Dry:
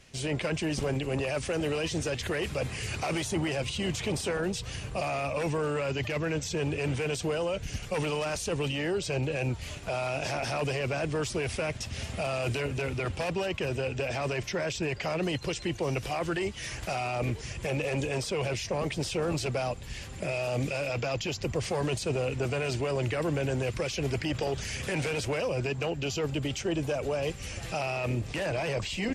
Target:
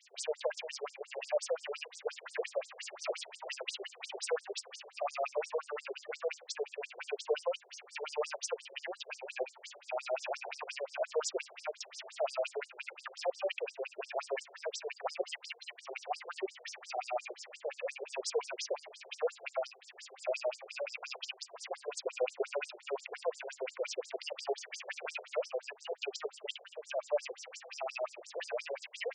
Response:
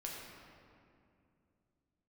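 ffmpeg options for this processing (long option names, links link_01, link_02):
-filter_complex "[0:a]acrossover=split=1700[link_01][link_02];[link_01]aeval=exprs='val(0)*(1-0.5/2+0.5/2*cos(2*PI*6.7*n/s))':channel_layout=same[link_03];[link_02]aeval=exprs='val(0)*(1-0.5/2-0.5/2*cos(2*PI*6.7*n/s))':channel_layout=same[link_04];[link_03][link_04]amix=inputs=2:normalize=0,afftfilt=real='re*between(b*sr/1024,500*pow(6800/500,0.5+0.5*sin(2*PI*5.7*pts/sr))/1.41,500*pow(6800/500,0.5+0.5*sin(2*PI*5.7*pts/sr))*1.41)':imag='im*between(b*sr/1024,500*pow(6800/500,0.5+0.5*sin(2*PI*5.7*pts/sr))/1.41,500*pow(6800/500,0.5+0.5*sin(2*PI*5.7*pts/sr))*1.41)':win_size=1024:overlap=0.75,volume=3dB"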